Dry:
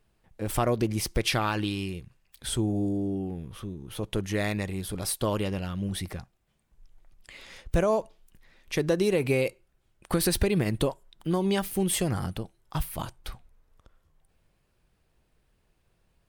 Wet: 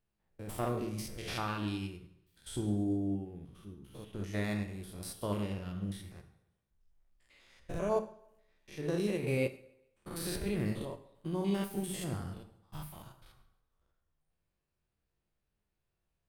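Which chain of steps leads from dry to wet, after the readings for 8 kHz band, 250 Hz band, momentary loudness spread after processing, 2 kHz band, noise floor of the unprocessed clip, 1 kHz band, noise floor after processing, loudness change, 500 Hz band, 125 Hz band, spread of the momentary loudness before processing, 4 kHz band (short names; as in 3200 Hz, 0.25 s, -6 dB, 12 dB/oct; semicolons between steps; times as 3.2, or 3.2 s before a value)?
-12.5 dB, -6.5 dB, 17 LU, -9.5 dB, -71 dBFS, -9.0 dB, -84 dBFS, -8.0 dB, -9.0 dB, -7.5 dB, 14 LU, -12.0 dB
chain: stepped spectrum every 0.1 s; on a send: thinning echo 0.137 s, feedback 44%, level -21 dB; on the sum: plate-style reverb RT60 0.83 s, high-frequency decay 0.7×, DRR 5.5 dB; upward expander 1.5:1, over -40 dBFS; gain -5.5 dB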